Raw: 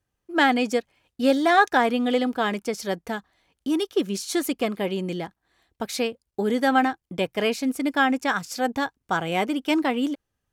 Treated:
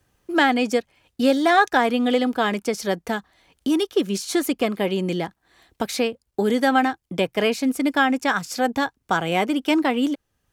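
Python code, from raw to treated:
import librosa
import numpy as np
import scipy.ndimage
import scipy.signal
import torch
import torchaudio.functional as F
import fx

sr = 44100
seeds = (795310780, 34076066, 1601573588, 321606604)

y = fx.band_squash(x, sr, depth_pct=40)
y = y * 10.0 ** (2.5 / 20.0)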